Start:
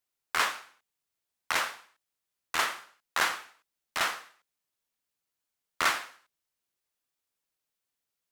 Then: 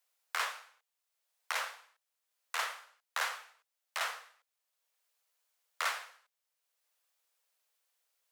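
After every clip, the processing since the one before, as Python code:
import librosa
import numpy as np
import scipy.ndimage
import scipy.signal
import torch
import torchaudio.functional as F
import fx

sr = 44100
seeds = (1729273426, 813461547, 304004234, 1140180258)

y = scipy.signal.sosfilt(scipy.signal.butter(16, 450.0, 'highpass', fs=sr, output='sos'), x)
y = fx.band_squash(y, sr, depth_pct=40)
y = y * librosa.db_to_amplitude(-6.0)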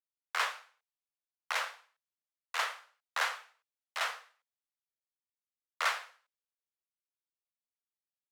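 y = fx.high_shelf(x, sr, hz=6200.0, db=-9.5)
y = fx.band_widen(y, sr, depth_pct=70)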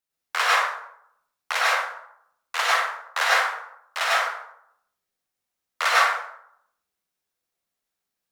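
y = fx.rev_plate(x, sr, seeds[0], rt60_s=0.71, hf_ratio=0.45, predelay_ms=85, drr_db=-6.0)
y = y * librosa.db_to_amplitude(7.0)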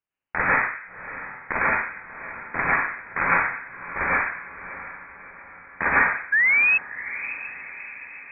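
y = fx.spec_paint(x, sr, seeds[1], shape='fall', start_s=6.32, length_s=0.46, low_hz=390.0, high_hz=1400.0, level_db=-18.0)
y = fx.freq_invert(y, sr, carrier_hz=3000)
y = fx.echo_diffused(y, sr, ms=656, feedback_pct=52, wet_db=-13.5)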